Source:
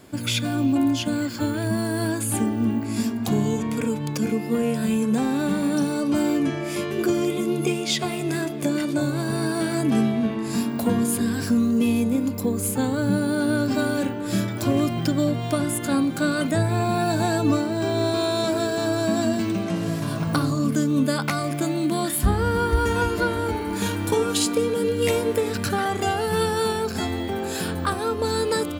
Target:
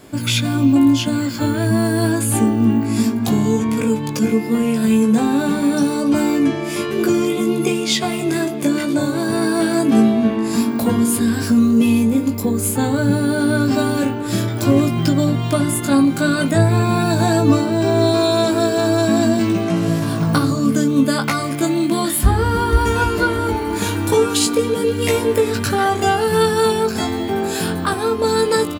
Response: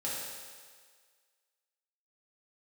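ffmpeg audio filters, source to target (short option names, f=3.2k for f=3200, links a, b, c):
-filter_complex "[0:a]asplit=2[a][b];[b]adelay=18,volume=-5dB[c];[a][c]amix=inputs=2:normalize=0,volume=4.5dB"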